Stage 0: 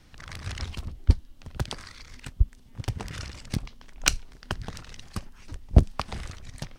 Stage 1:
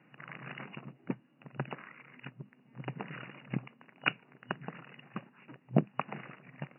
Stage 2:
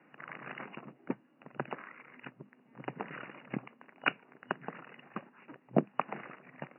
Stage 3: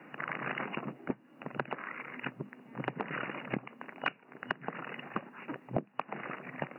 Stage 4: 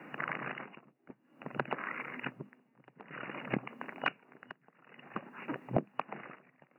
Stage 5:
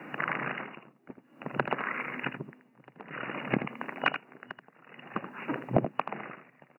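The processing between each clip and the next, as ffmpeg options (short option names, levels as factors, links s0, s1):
-af "afftfilt=real='re*between(b*sr/4096,120,2900)':imag='im*between(b*sr/4096,120,2900)':win_size=4096:overlap=0.75,volume=0.75"
-filter_complex "[0:a]acrossover=split=210 2500:gain=0.141 1 0.158[s0][s1][s2];[s0][s1][s2]amix=inputs=3:normalize=0,volume=1.41"
-af "acompressor=threshold=0.00794:ratio=6,volume=3.35"
-af "tremolo=f=0.53:d=0.96,volume=1.33"
-af "aecho=1:1:80:0.335,volume=1.88"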